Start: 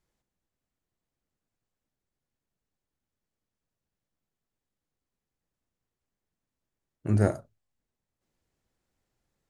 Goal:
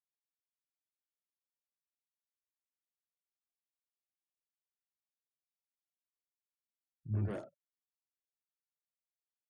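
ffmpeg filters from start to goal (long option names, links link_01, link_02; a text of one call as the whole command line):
ffmpeg -i in.wav -filter_complex "[0:a]lowpass=6800,afftfilt=real='re*gte(hypot(re,im),0.00631)':imag='im*gte(hypot(re,im),0.00631)':win_size=1024:overlap=0.75,acrossover=split=240[link_01][link_02];[link_02]asoftclip=type=tanh:threshold=-29.5dB[link_03];[link_01][link_03]amix=inputs=2:normalize=0,acrossover=split=200|3800[link_04][link_05][link_06];[link_05]adelay=80[link_07];[link_06]adelay=130[link_08];[link_04][link_07][link_08]amix=inputs=3:normalize=0,volume=-8.5dB" out.wav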